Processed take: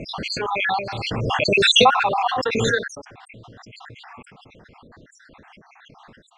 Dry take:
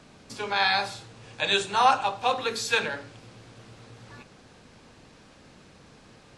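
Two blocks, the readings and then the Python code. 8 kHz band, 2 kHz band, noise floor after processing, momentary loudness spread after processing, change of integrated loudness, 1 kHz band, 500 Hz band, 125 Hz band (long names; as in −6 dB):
+5.0 dB, +5.5 dB, −54 dBFS, 13 LU, +6.0 dB, +4.0 dB, +9.0 dB, +14.0 dB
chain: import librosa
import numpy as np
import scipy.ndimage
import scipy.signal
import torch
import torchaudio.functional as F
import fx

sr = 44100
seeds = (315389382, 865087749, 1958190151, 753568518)

y = fx.spec_dropout(x, sr, seeds[0], share_pct=65)
y = scipy.signal.sosfilt(scipy.signal.butter(2, 2600.0, 'lowpass', fs=sr, output='sos'), y)
y = fx.pre_swell(y, sr, db_per_s=20.0)
y = F.gain(torch.from_numpy(y), 5.5).numpy()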